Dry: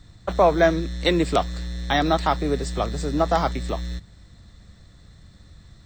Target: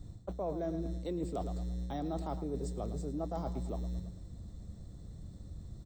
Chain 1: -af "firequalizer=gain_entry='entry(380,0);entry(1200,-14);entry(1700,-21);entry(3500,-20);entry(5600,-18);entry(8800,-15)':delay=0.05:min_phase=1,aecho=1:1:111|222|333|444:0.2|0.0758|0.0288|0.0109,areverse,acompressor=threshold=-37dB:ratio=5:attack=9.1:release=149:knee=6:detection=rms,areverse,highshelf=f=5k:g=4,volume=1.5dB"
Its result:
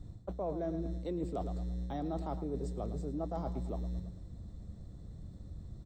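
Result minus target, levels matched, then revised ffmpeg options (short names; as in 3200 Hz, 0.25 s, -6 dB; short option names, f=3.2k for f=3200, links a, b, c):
8000 Hz band -6.5 dB
-af "firequalizer=gain_entry='entry(380,0);entry(1200,-14);entry(1700,-21);entry(3500,-20);entry(5600,-18);entry(8800,-15)':delay=0.05:min_phase=1,aecho=1:1:111|222|333|444:0.2|0.0758|0.0288|0.0109,areverse,acompressor=threshold=-37dB:ratio=5:attack=9.1:release=149:knee=6:detection=rms,areverse,highshelf=f=5k:g=13.5,volume=1.5dB"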